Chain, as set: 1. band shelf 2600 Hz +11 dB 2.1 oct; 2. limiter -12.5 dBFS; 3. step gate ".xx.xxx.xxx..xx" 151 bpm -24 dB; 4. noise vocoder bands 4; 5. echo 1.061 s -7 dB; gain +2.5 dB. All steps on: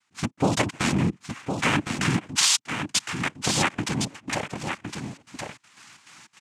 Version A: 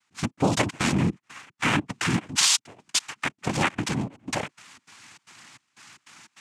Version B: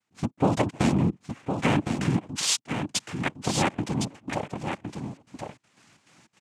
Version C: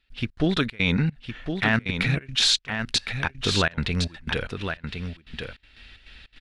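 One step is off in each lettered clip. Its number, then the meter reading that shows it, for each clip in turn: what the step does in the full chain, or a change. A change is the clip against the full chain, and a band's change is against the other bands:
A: 5, momentary loudness spread change -4 LU; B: 1, 2 kHz band -6.0 dB; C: 4, 8 kHz band -9.5 dB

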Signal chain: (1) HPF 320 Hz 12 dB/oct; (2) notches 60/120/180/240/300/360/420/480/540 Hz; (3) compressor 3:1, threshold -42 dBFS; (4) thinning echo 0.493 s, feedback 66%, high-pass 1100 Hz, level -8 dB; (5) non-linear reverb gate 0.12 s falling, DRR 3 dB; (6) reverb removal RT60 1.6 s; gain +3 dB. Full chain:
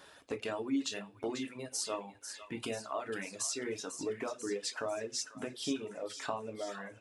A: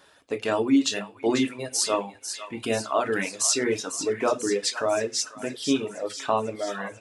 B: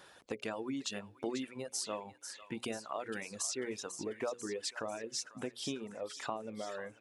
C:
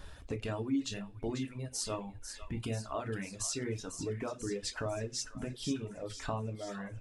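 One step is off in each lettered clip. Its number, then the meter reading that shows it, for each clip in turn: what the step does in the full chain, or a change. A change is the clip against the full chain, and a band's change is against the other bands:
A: 3, mean gain reduction 10.5 dB; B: 5, momentary loudness spread change -1 LU; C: 1, 125 Hz band +15.0 dB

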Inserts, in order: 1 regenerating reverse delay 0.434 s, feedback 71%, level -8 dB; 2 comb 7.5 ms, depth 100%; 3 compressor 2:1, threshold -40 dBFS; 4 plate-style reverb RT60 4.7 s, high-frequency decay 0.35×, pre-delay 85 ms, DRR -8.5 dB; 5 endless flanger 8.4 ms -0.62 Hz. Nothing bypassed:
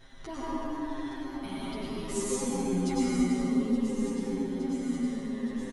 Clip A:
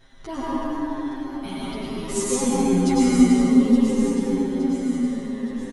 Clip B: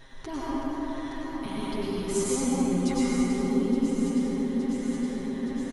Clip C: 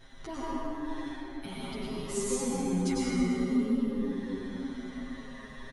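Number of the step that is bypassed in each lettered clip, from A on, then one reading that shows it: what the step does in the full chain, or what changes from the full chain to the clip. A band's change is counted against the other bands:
3, mean gain reduction 6.0 dB; 5, loudness change +3.0 LU; 1, 2 kHz band +1.5 dB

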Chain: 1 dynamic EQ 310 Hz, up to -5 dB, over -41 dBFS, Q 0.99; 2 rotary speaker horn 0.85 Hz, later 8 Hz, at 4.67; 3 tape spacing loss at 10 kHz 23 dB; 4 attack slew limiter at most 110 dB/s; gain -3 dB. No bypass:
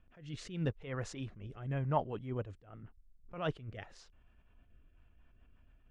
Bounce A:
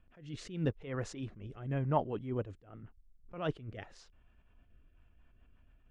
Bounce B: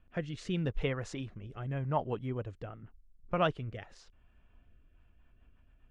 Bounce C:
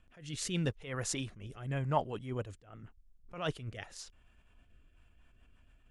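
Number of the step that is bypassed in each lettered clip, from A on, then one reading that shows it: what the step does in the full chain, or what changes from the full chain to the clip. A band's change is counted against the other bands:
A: 1, 250 Hz band +2.0 dB; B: 4, crest factor change -2.5 dB; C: 3, 4 kHz band +7.0 dB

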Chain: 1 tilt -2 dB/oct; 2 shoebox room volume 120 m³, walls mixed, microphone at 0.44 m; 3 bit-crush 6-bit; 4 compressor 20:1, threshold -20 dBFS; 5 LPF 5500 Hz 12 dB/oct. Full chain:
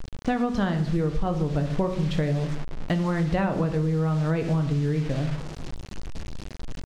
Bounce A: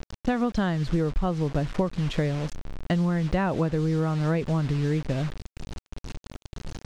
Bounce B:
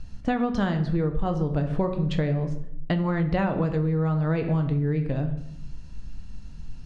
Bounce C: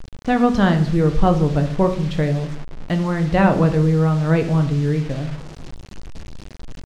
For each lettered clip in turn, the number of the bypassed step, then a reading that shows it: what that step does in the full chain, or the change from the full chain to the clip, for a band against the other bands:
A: 2, momentary loudness spread change +2 LU; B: 3, distortion -22 dB; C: 4, mean gain reduction 4.5 dB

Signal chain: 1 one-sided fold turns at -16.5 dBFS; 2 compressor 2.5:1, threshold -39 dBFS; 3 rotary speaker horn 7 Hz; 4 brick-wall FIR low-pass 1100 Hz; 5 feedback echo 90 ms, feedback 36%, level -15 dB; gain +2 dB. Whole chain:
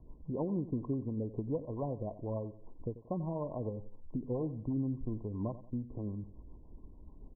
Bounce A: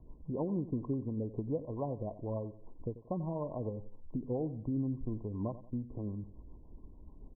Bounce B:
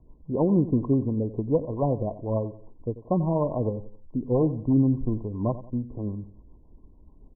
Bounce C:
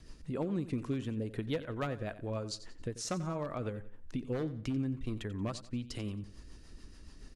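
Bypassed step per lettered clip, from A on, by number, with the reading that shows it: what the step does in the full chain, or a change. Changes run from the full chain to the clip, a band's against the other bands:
1, distortion -19 dB; 2, mean gain reduction 7.5 dB; 4, 1 kHz band +2.5 dB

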